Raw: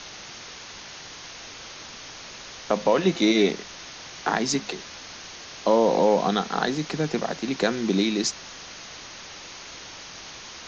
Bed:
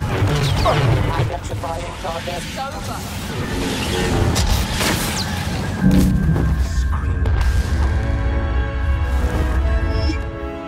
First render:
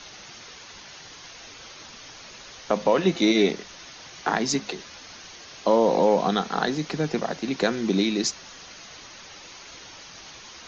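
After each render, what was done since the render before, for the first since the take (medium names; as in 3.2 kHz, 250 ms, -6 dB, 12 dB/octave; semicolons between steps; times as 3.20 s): noise reduction 6 dB, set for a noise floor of -42 dBFS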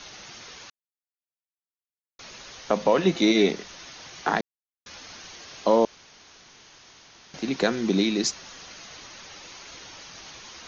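0.70–2.19 s: mute; 4.41–4.86 s: mute; 5.85–7.34 s: room tone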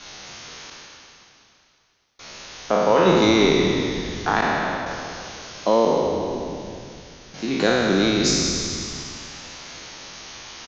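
spectral sustain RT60 2.34 s; frequency-shifting echo 182 ms, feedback 63%, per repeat -72 Hz, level -10 dB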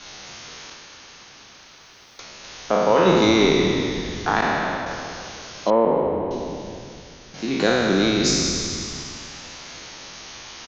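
0.70–2.44 s: three bands compressed up and down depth 100%; 5.70–6.31 s: low-pass 2.1 kHz 24 dB/octave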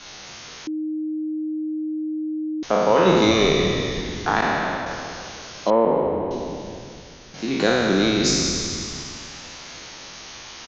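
0.67–2.63 s: bleep 310 Hz -23.5 dBFS; 3.31–4.01 s: comb 1.7 ms, depth 51%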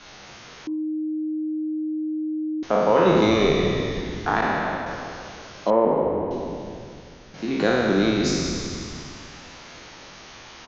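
treble shelf 3.4 kHz -11 dB; de-hum 46.09 Hz, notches 25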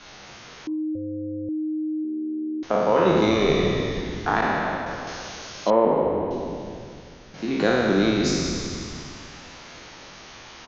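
0.95–1.49 s: AM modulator 210 Hz, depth 70%; 2.04–3.49 s: AM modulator 76 Hz, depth 20%; 5.07–6.31 s: treble shelf 3.5 kHz +11 dB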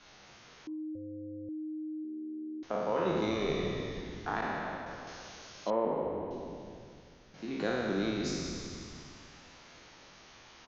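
trim -12 dB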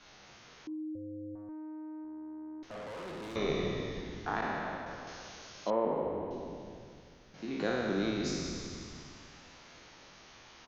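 1.35–3.36 s: valve stage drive 41 dB, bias 0.25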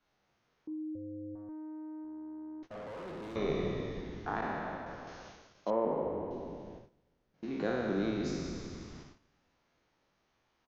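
gate -48 dBFS, range -18 dB; treble shelf 2.2 kHz -9 dB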